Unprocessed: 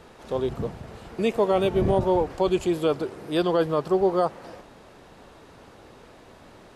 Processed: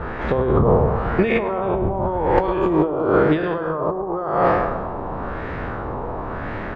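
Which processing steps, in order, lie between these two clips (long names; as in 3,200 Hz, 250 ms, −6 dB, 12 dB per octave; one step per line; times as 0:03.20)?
peak hold with a decay on every bin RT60 1.07 s
single-tap delay 238 ms −23 dB
auto-filter low-pass sine 0.95 Hz 930–1,900 Hz
0:00.64–0:02.89: low-shelf EQ 420 Hz −5.5 dB
compressor whose output falls as the input rises −29 dBFS, ratio −1
low-shelf EQ 120 Hz +10 dB
feedback echo with a low-pass in the loop 105 ms, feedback 72%, low-pass 2,300 Hz, level −15.5 dB
level +8 dB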